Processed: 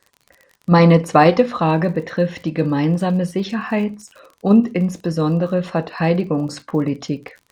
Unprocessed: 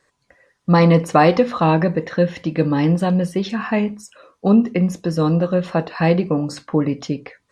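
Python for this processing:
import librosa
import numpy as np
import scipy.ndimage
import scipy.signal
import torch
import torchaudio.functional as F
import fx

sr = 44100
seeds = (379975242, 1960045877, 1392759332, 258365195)

p1 = fx.level_steps(x, sr, step_db=12)
p2 = x + (p1 * 10.0 ** (-1.0 / 20.0))
p3 = fx.dmg_crackle(p2, sr, seeds[0], per_s=44.0, level_db=-30.0)
y = p3 * 10.0 ** (-3.5 / 20.0)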